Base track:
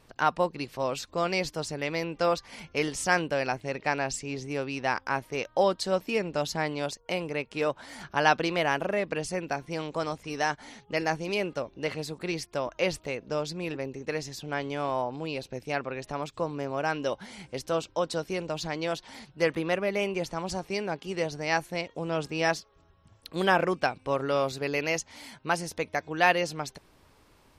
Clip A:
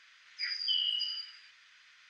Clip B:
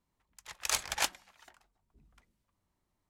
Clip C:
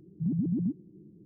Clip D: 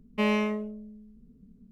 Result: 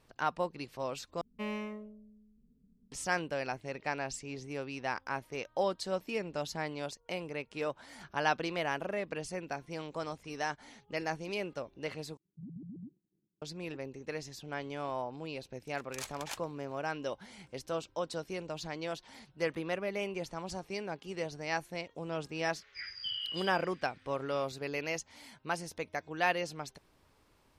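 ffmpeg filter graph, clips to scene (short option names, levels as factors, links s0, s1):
-filter_complex "[0:a]volume=0.422[s0];[3:a]agate=range=0.0224:threshold=0.00631:ratio=3:release=100:detection=peak[s1];[1:a]aemphasis=mode=reproduction:type=75kf[s2];[s0]asplit=3[s3][s4][s5];[s3]atrim=end=1.214[s6];[4:a]atrim=end=1.71,asetpts=PTS-STARTPTS,volume=0.237[s7];[s4]atrim=start=2.916:end=12.174[s8];[s1]atrim=end=1.25,asetpts=PTS-STARTPTS,volume=0.133[s9];[s5]atrim=start=13.416[s10];[2:a]atrim=end=3.09,asetpts=PTS-STARTPTS,volume=0.266,afade=t=in:d=0.004:c=hsin,afade=t=out:st=3.086:d=0.004:c=hsin,adelay=15290[s11];[s2]atrim=end=2.09,asetpts=PTS-STARTPTS,volume=0.794,afade=t=in:d=0.004:c=hsin,afade=t=out:st=2.086:d=0.004:c=hsin,adelay=22360[s12];[s6][s7]acrossfade=d=0.004:c1=hsin:c2=hsin[s13];[s13][s8]acrossfade=d=0.004:c1=hsin:c2=hsin[s14];[s14][s9]acrossfade=d=0.004:c1=hsin:c2=hsin[s15];[s15][s10]acrossfade=d=0.004:c1=hsin:c2=hsin[s16];[s16][s11][s12]amix=inputs=3:normalize=0"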